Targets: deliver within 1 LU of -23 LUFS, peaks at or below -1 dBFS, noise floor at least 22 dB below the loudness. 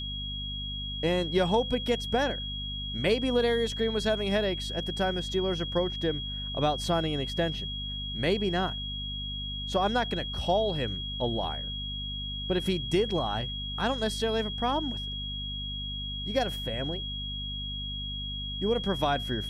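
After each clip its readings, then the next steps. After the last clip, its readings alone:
hum 50 Hz; harmonics up to 250 Hz; hum level -36 dBFS; steady tone 3300 Hz; tone level -35 dBFS; loudness -29.5 LUFS; peak -12.5 dBFS; loudness target -23.0 LUFS
-> de-hum 50 Hz, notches 5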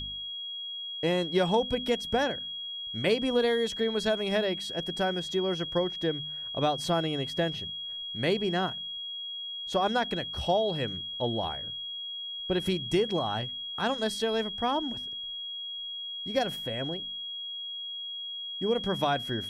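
hum none; steady tone 3300 Hz; tone level -35 dBFS
-> notch 3300 Hz, Q 30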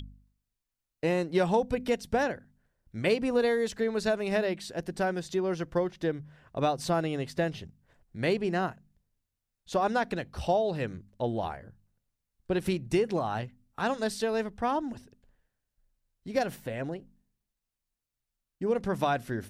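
steady tone none; loudness -30.5 LUFS; peak -13.0 dBFS; loudness target -23.0 LUFS
-> gain +7.5 dB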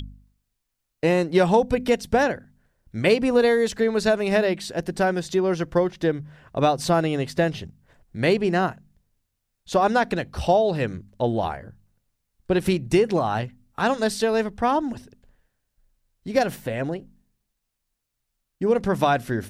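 loudness -23.0 LUFS; peak -5.5 dBFS; noise floor -79 dBFS

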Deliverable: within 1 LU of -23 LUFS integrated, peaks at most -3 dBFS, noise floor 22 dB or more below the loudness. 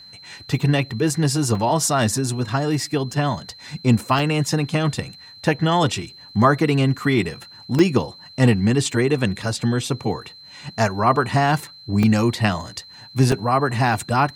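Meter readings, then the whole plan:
dropouts 8; longest dropout 2.5 ms; steady tone 4100 Hz; tone level -41 dBFS; loudness -20.5 LUFS; peak -2.5 dBFS; loudness target -23.0 LUFS
-> interpolate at 1.55/3.13/4.19/7.79/8.92/12.03/13.32/14, 2.5 ms; notch 4100 Hz, Q 30; gain -2.5 dB

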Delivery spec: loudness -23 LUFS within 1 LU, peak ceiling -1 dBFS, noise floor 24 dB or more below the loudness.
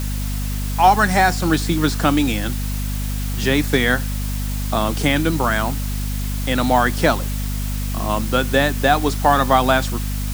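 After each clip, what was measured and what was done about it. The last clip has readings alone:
hum 50 Hz; harmonics up to 250 Hz; hum level -21 dBFS; noise floor -23 dBFS; noise floor target -43 dBFS; loudness -19.0 LUFS; peak -2.0 dBFS; loudness target -23.0 LUFS
-> de-hum 50 Hz, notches 5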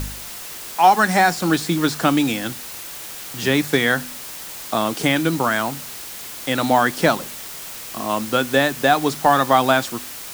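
hum none; noise floor -34 dBFS; noise floor target -43 dBFS
-> denoiser 9 dB, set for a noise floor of -34 dBFS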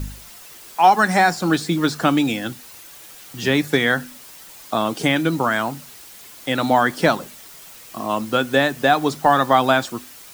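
noise floor -42 dBFS; noise floor target -43 dBFS
-> denoiser 6 dB, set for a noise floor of -42 dBFS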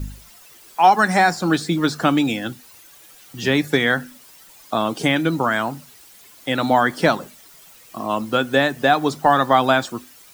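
noise floor -47 dBFS; loudness -19.0 LUFS; peak -3.5 dBFS; loudness target -23.0 LUFS
-> gain -4 dB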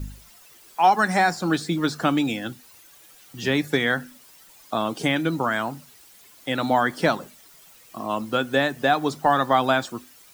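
loudness -23.0 LUFS; peak -7.5 dBFS; noise floor -51 dBFS

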